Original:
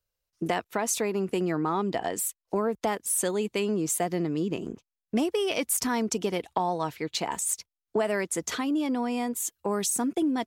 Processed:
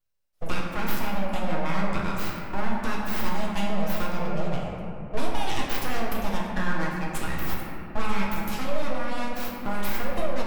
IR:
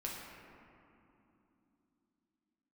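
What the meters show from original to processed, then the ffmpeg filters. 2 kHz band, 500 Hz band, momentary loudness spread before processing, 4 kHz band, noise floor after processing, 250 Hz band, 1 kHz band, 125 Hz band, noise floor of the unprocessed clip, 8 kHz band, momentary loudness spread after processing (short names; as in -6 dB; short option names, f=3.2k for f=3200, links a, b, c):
+4.0 dB, -4.0 dB, 5 LU, -0.5 dB, -37 dBFS, -2.5 dB, +1.0 dB, +4.5 dB, under -85 dBFS, -14.0 dB, 4 LU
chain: -filter_complex "[0:a]aeval=exprs='abs(val(0))':c=same[a];[1:a]atrim=start_sample=2205[b];[a][b]afir=irnorm=-1:irlink=0,volume=2dB"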